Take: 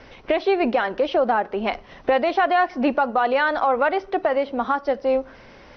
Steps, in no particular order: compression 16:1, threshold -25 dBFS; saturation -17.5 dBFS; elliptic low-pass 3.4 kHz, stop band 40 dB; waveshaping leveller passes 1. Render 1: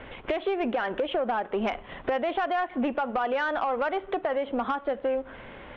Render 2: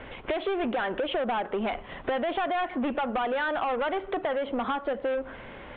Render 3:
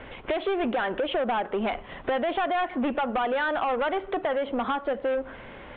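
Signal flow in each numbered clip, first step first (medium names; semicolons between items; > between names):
compression > waveshaping leveller > elliptic low-pass > saturation; saturation > waveshaping leveller > compression > elliptic low-pass; saturation > compression > waveshaping leveller > elliptic low-pass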